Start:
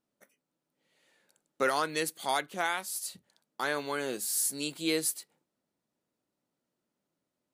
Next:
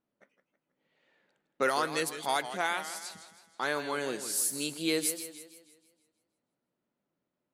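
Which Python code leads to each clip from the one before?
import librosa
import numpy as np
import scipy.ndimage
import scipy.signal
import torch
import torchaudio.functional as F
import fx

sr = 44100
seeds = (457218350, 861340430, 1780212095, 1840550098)

y = fx.env_lowpass(x, sr, base_hz=2800.0, full_db=-27.0)
y = fx.echo_warbled(y, sr, ms=160, feedback_pct=48, rate_hz=2.8, cents=130, wet_db=-11.5)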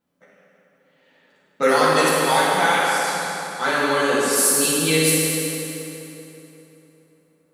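y = fx.rev_fdn(x, sr, rt60_s=3.4, lf_ratio=1.0, hf_ratio=0.7, size_ms=35.0, drr_db=-9.0)
y = y * librosa.db_to_amplitude(4.5)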